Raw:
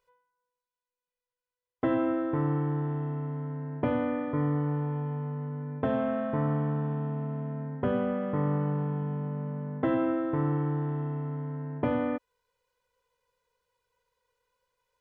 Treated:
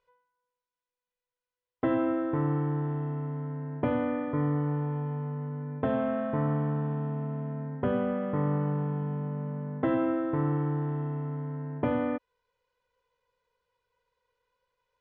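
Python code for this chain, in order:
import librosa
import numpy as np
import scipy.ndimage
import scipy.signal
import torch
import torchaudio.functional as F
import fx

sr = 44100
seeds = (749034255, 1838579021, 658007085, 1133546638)

y = scipy.signal.sosfilt(scipy.signal.butter(2, 4300.0, 'lowpass', fs=sr, output='sos'), x)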